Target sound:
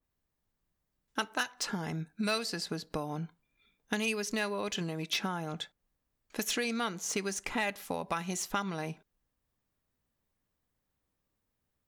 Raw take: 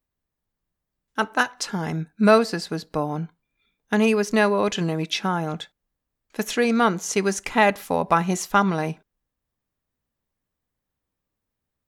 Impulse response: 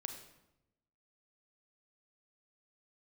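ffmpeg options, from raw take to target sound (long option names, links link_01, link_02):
-filter_complex "[0:a]acrossover=split=2500[link_01][link_02];[link_01]acompressor=threshold=-33dB:ratio=6[link_03];[link_02]asoftclip=type=hard:threshold=-24.5dB[link_04];[link_03][link_04]amix=inputs=2:normalize=0,adynamicequalizer=threshold=0.00447:dfrequency=2200:dqfactor=0.7:tfrequency=2200:tqfactor=0.7:attack=5:release=100:ratio=0.375:range=3.5:mode=cutabove:tftype=highshelf"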